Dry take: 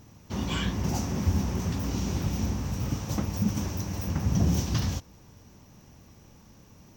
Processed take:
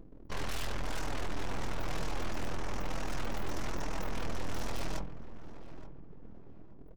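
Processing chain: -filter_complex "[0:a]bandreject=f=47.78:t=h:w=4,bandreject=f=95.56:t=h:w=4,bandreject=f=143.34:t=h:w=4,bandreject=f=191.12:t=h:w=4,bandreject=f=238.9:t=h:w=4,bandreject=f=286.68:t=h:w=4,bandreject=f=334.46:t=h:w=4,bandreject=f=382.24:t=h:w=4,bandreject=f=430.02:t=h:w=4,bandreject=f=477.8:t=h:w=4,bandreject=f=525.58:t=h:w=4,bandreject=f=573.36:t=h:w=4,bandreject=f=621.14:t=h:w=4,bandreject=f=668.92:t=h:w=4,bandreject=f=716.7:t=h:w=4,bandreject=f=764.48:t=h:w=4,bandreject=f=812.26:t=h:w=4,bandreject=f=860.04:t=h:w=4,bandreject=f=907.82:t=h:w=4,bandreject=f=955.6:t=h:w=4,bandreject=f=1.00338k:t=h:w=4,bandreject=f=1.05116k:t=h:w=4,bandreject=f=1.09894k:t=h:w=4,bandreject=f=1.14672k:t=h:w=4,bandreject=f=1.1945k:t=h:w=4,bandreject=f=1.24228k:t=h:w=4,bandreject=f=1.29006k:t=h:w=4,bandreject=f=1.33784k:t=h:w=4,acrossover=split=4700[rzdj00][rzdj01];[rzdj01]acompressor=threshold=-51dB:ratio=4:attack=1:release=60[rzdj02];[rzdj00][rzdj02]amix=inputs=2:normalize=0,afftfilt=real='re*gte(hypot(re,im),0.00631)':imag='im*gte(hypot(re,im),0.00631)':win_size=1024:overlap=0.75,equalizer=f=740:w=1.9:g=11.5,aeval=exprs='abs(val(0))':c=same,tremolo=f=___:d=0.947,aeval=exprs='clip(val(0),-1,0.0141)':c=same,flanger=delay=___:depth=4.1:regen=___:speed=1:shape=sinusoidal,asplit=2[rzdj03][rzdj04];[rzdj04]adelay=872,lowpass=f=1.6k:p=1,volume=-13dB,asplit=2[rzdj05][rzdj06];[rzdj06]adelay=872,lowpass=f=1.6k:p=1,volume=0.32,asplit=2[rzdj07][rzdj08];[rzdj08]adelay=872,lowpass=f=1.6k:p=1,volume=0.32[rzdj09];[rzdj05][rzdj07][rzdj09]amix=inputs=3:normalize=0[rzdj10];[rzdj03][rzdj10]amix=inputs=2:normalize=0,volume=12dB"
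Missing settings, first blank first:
41, 6.2, -49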